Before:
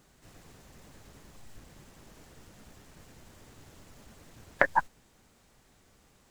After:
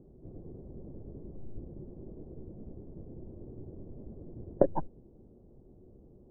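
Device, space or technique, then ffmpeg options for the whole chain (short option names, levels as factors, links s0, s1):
under water: -af "lowpass=f=510:w=0.5412,lowpass=f=510:w=1.3066,equalizer=f=360:t=o:w=0.22:g=7.5,volume=2.82"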